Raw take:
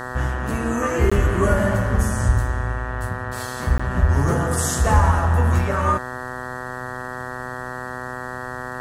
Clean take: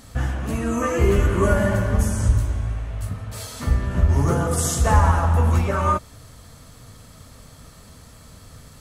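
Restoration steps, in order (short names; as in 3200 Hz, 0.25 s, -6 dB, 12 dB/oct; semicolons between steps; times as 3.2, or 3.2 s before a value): de-hum 125.8 Hz, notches 15; interpolate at 1.1/3.78, 15 ms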